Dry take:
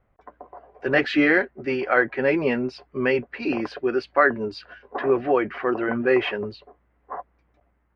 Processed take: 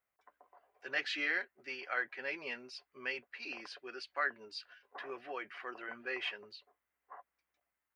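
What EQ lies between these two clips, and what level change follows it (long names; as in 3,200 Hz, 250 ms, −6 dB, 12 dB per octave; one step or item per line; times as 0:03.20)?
first difference
low-shelf EQ 64 Hz +10 dB
−1.0 dB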